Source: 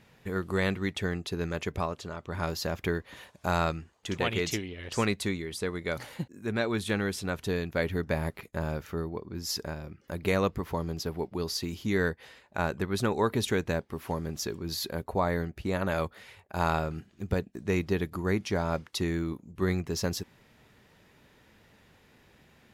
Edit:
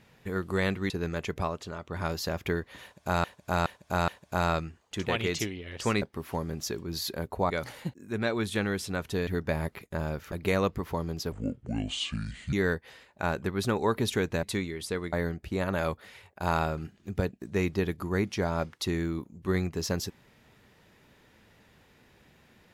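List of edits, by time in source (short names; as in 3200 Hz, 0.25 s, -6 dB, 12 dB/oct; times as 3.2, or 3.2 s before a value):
0.9–1.28 cut
3.2–3.62 loop, 4 plays
5.14–5.84 swap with 13.78–15.26
7.61–7.89 cut
8.94–10.12 cut
11.12–11.88 speed 63%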